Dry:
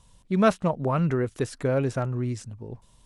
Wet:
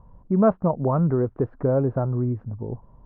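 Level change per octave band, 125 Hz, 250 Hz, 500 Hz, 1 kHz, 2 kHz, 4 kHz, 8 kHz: +3.5 dB, +3.5 dB, +3.0 dB, +0.5 dB, −10.0 dB, below −35 dB, below −35 dB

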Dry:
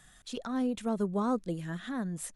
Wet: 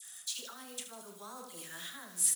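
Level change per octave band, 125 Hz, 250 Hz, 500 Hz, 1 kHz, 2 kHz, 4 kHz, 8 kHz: −23.5, −23.5, −16.5, −11.5, −2.5, +5.0, +13.5 decibels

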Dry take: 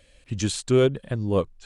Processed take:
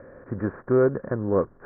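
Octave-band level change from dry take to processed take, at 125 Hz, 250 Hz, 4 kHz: −4.0 dB, −0.5 dB, below −40 dB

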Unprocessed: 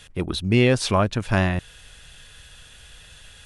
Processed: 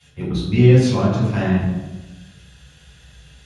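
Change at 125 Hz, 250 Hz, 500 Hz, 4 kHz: +7.5, +5.5, +3.0, −3.5 decibels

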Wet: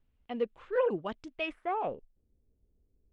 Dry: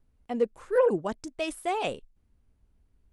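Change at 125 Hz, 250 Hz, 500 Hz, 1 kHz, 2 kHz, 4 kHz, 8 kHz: −6.0 dB, −6.0 dB, −5.5 dB, −3.0 dB, −2.5 dB, −6.0 dB, below −20 dB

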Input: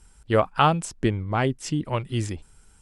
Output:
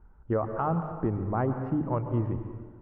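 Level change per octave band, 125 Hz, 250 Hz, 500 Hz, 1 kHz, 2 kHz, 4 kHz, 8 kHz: −3.0 dB, −2.5 dB, −5.0 dB, −8.0 dB, −14.0 dB, below −30 dB, below −40 dB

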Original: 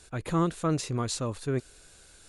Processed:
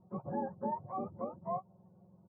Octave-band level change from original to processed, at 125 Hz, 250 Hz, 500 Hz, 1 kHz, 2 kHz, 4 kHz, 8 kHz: −17.5 dB, −11.5 dB, −7.5 dB, −2.5 dB, below −15 dB, below −40 dB, below −40 dB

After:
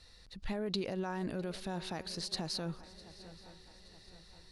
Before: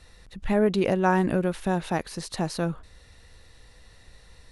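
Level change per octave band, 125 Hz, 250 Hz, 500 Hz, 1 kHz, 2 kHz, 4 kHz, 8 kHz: −13.0, −13.5, −14.5, −16.0, −14.5, −0.5, −6.5 decibels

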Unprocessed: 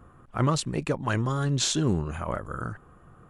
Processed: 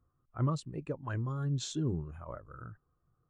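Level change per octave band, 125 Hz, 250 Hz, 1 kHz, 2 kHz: −6.5, −8.5, −12.0, −14.5 decibels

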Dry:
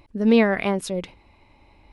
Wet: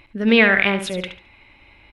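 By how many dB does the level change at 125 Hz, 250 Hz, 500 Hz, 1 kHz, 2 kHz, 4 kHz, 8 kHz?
+1.0, +0.5, +1.0, +2.5, +12.0, +10.0, +0.5 decibels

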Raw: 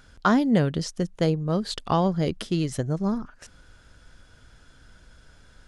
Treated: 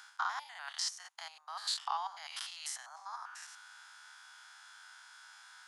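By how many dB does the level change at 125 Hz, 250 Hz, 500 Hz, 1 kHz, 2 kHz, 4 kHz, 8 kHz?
below −40 dB, below −40 dB, −33.0 dB, −9.5 dB, −8.0 dB, −3.0 dB, −0.5 dB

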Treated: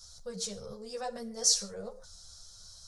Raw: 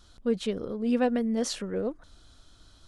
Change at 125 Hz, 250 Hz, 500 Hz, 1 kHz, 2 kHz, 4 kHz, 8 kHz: −9.5, −18.0, −11.0, −6.5, −10.5, +6.0, +11.0 decibels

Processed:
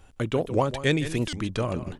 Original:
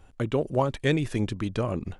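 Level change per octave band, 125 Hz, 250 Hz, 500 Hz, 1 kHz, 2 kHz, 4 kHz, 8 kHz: 0.0, +0.5, +0.5, +1.0, +3.0, +5.0, +6.0 decibels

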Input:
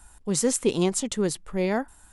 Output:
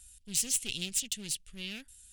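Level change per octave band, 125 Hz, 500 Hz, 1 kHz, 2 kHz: −16.0 dB, −28.0 dB, below −25 dB, −6.5 dB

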